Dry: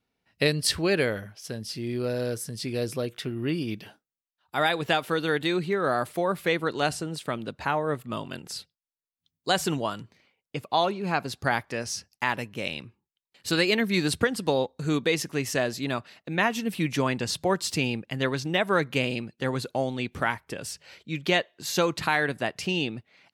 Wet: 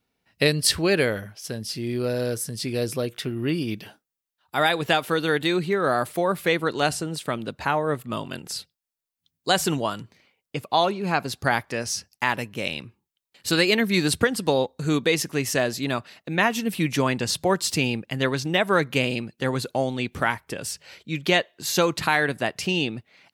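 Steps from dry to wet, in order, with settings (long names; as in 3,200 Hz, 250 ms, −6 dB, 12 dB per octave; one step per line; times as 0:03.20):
high-shelf EQ 8,400 Hz +5 dB
level +3 dB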